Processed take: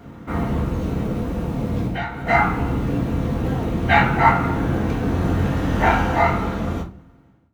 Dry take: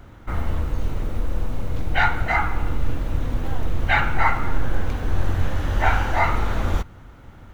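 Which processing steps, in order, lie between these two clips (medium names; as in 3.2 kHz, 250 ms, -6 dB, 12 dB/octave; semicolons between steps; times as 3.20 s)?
fade out at the end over 1.70 s; high-pass 170 Hz 12 dB/octave; bass shelf 420 Hz +12 dB; 1.84–2.27 s: compression 10:1, threshold -27 dBFS, peak gain reduction 14.5 dB; simulated room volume 190 m³, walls furnished, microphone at 1.7 m; trim -1 dB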